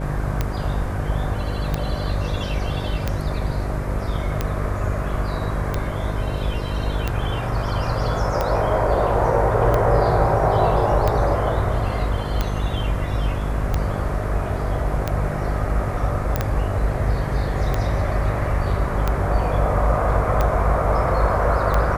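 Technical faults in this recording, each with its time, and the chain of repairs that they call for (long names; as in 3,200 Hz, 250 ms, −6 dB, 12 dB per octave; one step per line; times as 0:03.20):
mains buzz 50 Hz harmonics 11 −26 dBFS
scratch tick 45 rpm −8 dBFS
0:16.36: click −7 dBFS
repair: click removal
hum removal 50 Hz, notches 11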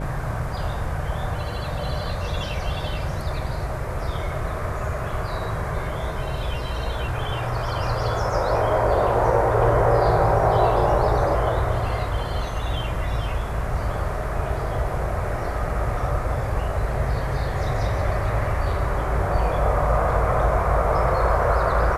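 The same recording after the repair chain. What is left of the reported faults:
none of them is left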